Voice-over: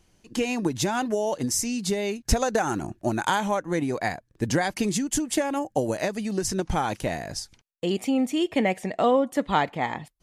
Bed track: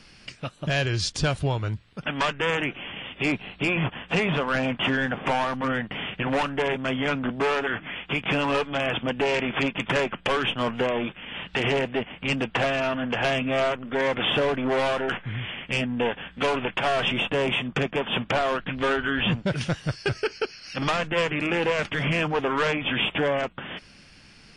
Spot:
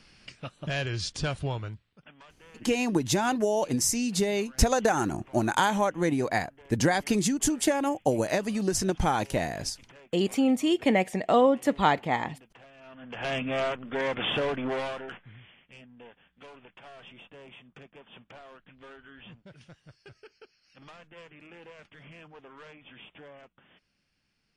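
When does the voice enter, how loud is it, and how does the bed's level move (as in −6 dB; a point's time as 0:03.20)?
2.30 s, 0.0 dB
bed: 0:01.59 −6 dB
0:02.24 −29.5 dB
0:12.73 −29.5 dB
0:13.34 −5 dB
0:14.65 −5 dB
0:15.67 −25 dB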